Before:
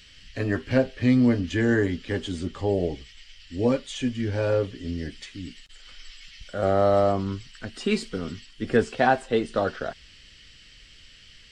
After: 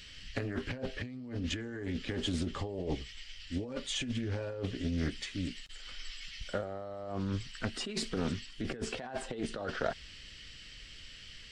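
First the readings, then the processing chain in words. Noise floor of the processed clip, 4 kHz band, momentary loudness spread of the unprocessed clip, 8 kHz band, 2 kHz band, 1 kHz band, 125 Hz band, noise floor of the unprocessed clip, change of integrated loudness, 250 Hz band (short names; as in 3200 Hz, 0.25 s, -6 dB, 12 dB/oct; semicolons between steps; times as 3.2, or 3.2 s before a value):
-51 dBFS, -2.0 dB, 18 LU, -0.5 dB, -10.5 dB, -16.0 dB, -9.0 dB, -51 dBFS, -12.5 dB, -12.0 dB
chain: negative-ratio compressor -31 dBFS, ratio -1; Doppler distortion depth 0.27 ms; gain -5.5 dB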